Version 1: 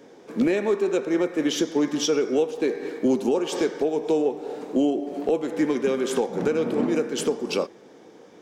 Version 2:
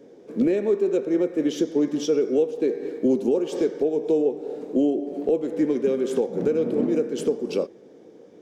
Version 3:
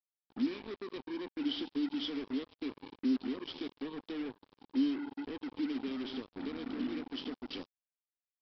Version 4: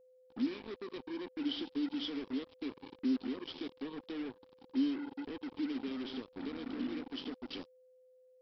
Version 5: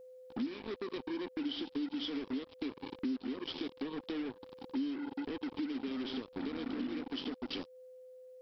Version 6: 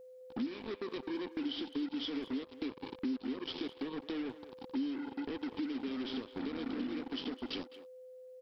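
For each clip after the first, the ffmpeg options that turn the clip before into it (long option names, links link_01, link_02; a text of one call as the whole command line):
ffmpeg -i in.wav -af "lowshelf=frequency=680:width_type=q:width=1.5:gain=7.5,volume=-8dB" out.wav
ffmpeg -i in.wav -filter_complex "[0:a]asplit=3[link_01][link_02][link_03];[link_01]bandpass=frequency=270:width_type=q:width=8,volume=0dB[link_04];[link_02]bandpass=frequency=2290:width_type=q:width=8,volume=-6dB[link_05];[link_03]bandpass=frequency=3010:width_type=q:width=8,volume=-9dB[link_06];[link_04][link_05][link_06]amix=inputs=3:normalize=0,aexciter=amount=7.2:drive=8.6:freq=3000,aresample=11025,acrusher=bits=5:mix=0:aa=0.5,aresample=44100,volume=-6dB" out.wav
ffmpeg -i in.wav -af "aeval=exprs='val(0)+0.001*sin(2*PI*510*n/s)':channel_layout=same,volume=-1.5dB" out.wav
ffmpeg -i in.wav -af "acompressor=threshold=-49dB:ratio=3,volume=10.5dB" out.wav
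ffmpeg -i in.wav -filter_complex "[0:a]asplit=2[link_01][link_02];[link_02]adelay=210,highpass=300,lowpass=3400,asoftclip=type=hard:threshold=-36.5dB,volume=-13dB[link_03];[link_01][link_03]amix=inputs=2:normalize=0" out.wav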